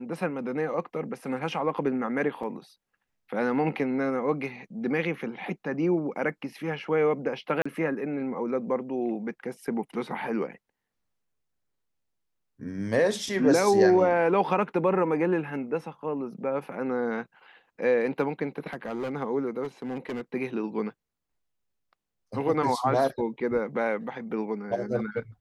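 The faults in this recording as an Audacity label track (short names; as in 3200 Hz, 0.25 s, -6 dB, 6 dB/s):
2.430000	2.430000	gap 4 ms
7.620000	7.660000	gap 35 ms
18.670000	19.150000	clipped -27.5 dBFS
19.630000	20.210000	clipped -29 dBFS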